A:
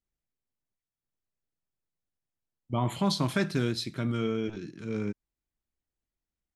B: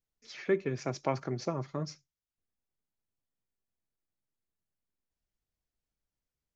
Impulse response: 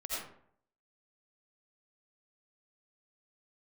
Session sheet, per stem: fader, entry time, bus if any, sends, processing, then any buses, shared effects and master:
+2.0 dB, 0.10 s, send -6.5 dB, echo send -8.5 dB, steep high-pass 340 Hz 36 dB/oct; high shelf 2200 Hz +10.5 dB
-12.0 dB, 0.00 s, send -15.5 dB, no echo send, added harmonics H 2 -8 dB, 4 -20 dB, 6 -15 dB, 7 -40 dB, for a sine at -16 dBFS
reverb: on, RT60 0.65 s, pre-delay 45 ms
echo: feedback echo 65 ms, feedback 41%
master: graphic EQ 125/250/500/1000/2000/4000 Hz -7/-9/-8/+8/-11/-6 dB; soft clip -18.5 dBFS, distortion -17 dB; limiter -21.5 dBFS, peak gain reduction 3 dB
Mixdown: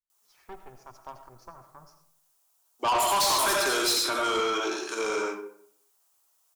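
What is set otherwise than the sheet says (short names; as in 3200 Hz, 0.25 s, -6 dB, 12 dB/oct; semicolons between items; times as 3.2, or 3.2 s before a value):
stem A +2.0 dB -> +13.0 dB; reverb return +7.0 dB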